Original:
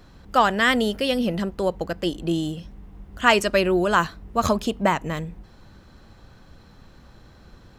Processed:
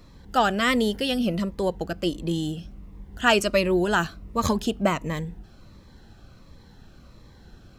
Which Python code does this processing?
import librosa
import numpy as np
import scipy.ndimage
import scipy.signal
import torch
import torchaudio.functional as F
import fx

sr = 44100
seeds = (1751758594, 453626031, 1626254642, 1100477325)

y = fx.notch_cascade(x, sr, direction='falling', hz=1.4)